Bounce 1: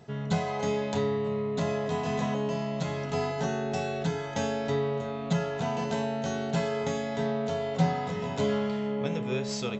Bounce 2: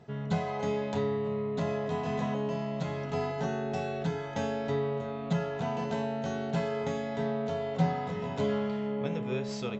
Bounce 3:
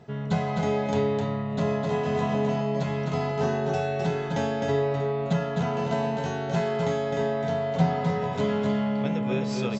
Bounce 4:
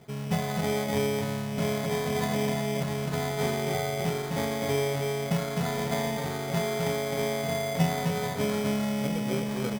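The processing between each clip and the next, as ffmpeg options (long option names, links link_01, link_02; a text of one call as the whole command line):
ffmpeg -i in.wav -af "lowpass=frequency=3100:poles=1,volume=-2dB" out.wav
ffmpeg -i in.wav -af "aecho=1:1:258:0.631,volume=4dB" out.wav
ffmpeg -i in.wav -af "acrusher=samples=16:mix=1:aa=0.000001,volume=-2.5dB" out.wav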